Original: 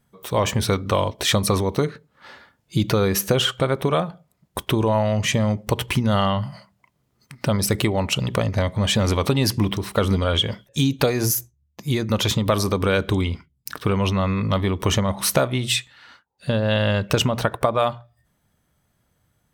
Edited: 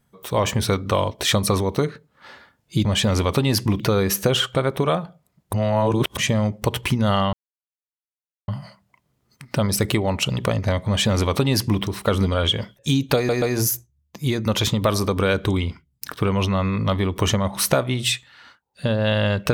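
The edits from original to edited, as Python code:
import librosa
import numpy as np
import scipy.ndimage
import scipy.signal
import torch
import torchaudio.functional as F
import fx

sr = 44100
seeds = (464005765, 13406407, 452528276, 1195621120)

y = fx.edit(x, sr, fx.reverse_span(start_s=4.58, length_s=0.64),
    fx.insert_silence(at_s=6.38, length_s=1.15),
    fx.duplicate(start_s=8.77, length_s=0.95, to_s=2.85),
    fx.stutter(start_s=11.06, slice_s=0.13, count=3), tone=tone)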